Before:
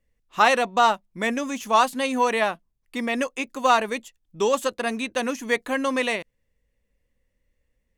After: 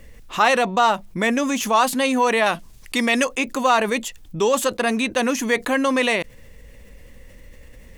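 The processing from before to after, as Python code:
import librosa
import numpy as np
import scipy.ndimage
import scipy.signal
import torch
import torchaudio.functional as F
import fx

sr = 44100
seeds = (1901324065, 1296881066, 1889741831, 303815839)

y = fx.peak_eq(x, sr, hz=6600.0, db=8.5, octaves=3.0, at=(2.46, 3.25))
y = fx.env_flatten(y, sr, amount_pct=50)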